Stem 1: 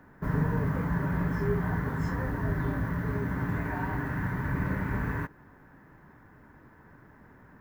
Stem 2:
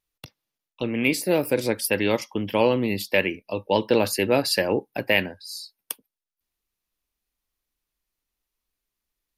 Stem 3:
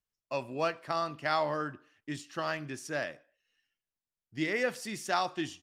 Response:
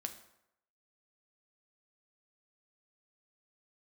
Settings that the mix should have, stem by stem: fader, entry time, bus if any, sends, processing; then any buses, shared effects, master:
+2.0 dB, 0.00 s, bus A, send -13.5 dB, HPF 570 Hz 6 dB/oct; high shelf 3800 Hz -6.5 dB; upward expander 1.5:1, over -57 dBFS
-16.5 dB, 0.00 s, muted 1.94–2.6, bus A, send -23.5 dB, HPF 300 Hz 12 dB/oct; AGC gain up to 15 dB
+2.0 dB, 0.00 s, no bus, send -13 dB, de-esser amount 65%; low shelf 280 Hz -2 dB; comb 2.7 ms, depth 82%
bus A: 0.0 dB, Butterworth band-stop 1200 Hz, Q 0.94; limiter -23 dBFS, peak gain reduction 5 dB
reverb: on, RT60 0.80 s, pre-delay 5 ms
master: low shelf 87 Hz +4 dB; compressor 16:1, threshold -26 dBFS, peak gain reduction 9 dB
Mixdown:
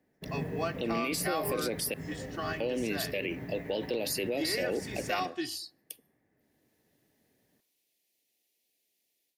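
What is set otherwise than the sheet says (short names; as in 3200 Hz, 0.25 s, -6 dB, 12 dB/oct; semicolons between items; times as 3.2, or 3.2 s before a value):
stem 2 -16.5 dB -> -8.0 dB; stem 3 +2.0 dB -> -5.5 dB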